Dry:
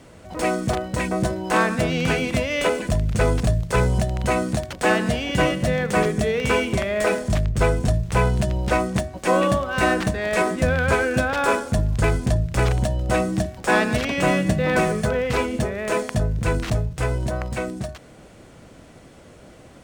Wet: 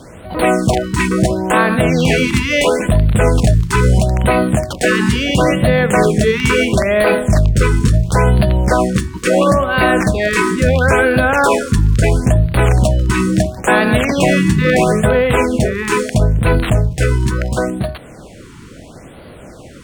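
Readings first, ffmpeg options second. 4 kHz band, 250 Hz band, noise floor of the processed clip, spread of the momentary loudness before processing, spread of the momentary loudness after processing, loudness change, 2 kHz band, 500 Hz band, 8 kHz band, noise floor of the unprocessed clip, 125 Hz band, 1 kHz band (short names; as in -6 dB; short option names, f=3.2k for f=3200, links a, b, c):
+7.5 dB, +9.0 dB, -37 dBFS, 5 LU, 4 LU, +8.0 dB, +7.5 dB, +7.5 dB, +8.0 dB, -47 dBFS, +9.0 dB, +6.5 dB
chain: -af "alimiter=level_in=11.5dB:limit=-1dB:release=50:level=0:latency=1,afftfilt=real='re*(1-between(b*sr/1024,590*pow(6800/590,0.5+0.5*sin(2*PI*0.74*pts/sr))/1.41,590*pow(6800/590,0.5+0.5*sin(2*PI*0.74*pts/sr))*1.41))':imag='im*(1-between(b*sr/1024,590*pow(6800/590,0.5+0.5*sin(2*PI*0.74*pts/sr))/1.41,590*pow(6800/590,0.5+0.5*sin(2*PI*0.74*pts/sr))*1.41))':win_size=1024:overlap=0.75,volume=-1.5dB"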